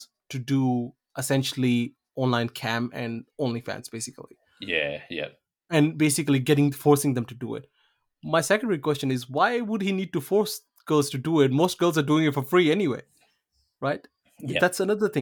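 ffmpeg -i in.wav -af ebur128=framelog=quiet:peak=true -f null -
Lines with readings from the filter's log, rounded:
Integrated loudness:
  I:         -24.9 LUFS
  Threshold: -35.6 LUFS
Loudness range:
  LRA:         5.7 LU
  Threshold: -45.5 LUFS
  LRA low:   -29.2 LUFS
  LRA high:  -23.6 LUFS
True peak:
  Peak:       -7.9 dBFS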